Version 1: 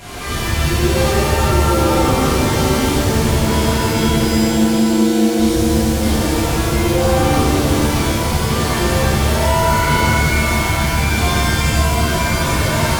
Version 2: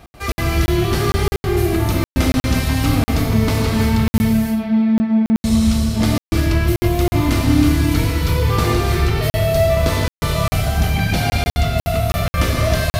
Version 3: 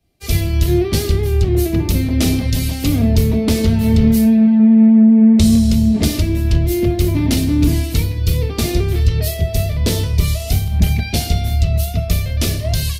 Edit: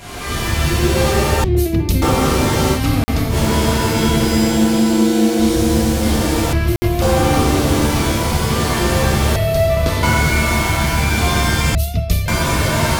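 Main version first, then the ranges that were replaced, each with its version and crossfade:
1
1.44–2.02 from 3
2.77–3.33 from 2, crossfade 0.10 s
6.53–7.02 from 2
9.36–10.03 from 2
11.75–12.28 from 3

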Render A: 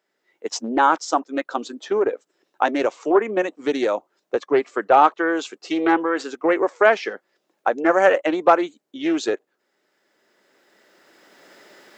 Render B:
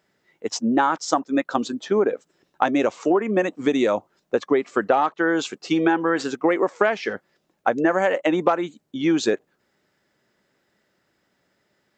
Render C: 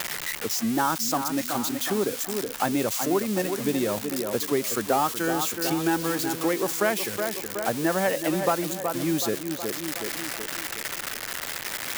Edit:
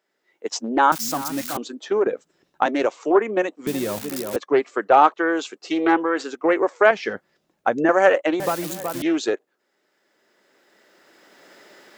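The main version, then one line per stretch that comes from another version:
A
0.92–1.57 from C
2.07–2.66 from B
3.67–4.36 from C
6.91–7.89 from B
8.4–9.02 from C

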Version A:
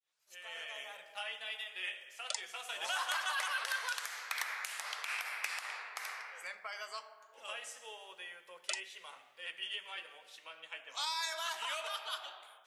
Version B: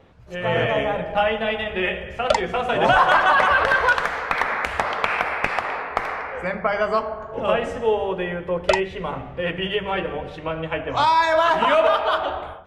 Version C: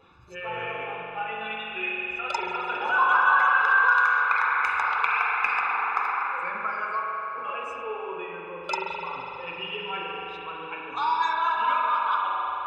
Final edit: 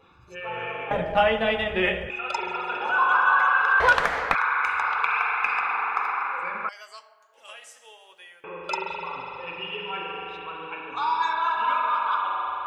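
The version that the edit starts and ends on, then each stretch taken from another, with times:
C
0.91–2.1 from B
3.8–4.35 from B
6.69–8.44 from A

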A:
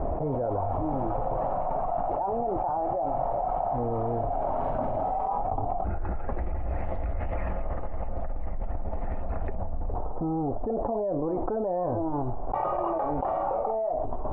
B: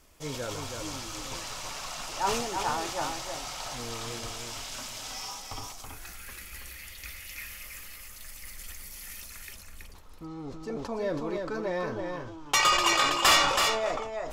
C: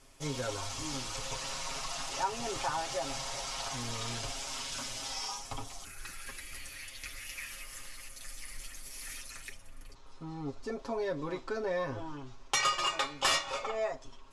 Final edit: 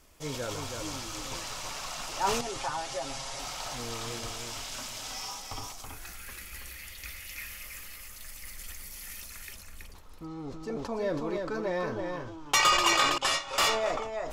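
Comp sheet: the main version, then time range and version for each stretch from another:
B
2.41–3.39 from C
13.18–13.58 from C
not used: A

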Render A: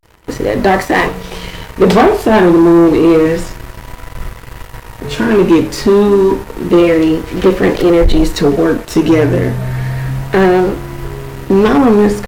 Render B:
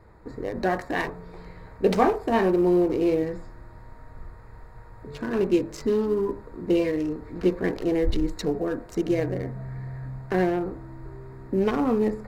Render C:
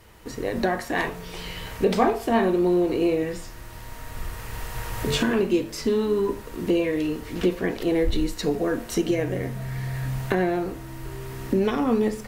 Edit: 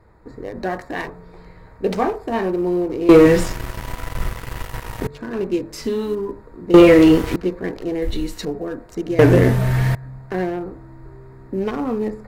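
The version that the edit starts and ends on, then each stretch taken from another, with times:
B
3.09–5.07 from A
5.73–6.15 from C
6.74–7.36 from A
8.02–8.45 from C
9.19–9.95 from A

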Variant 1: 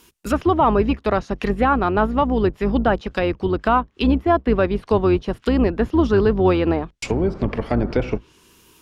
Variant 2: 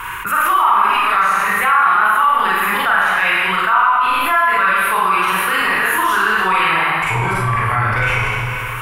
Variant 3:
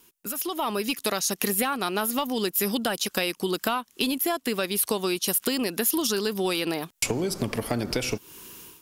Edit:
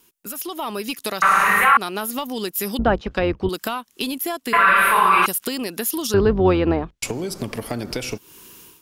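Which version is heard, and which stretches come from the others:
3
1.22–1.77 from 2
2.79–3.49 from 1
4.53–5.26 from 2
6.14–7.03 from 1

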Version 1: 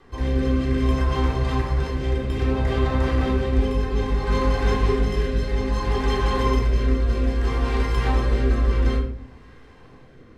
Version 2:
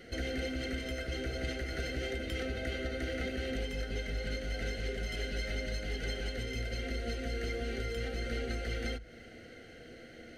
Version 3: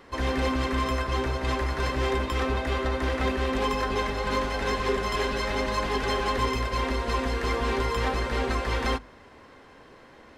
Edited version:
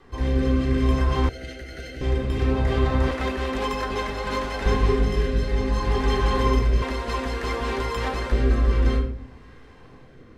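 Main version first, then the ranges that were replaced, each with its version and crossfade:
1
1.29–2.01 from 2
3.11–4.66 from 3
6.82–8.32 from 3

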